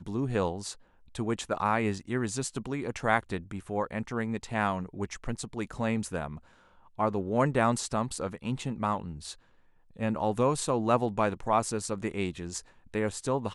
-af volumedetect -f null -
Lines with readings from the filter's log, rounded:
mean_volume: -31.0 dB
max_volume: -9.7 dB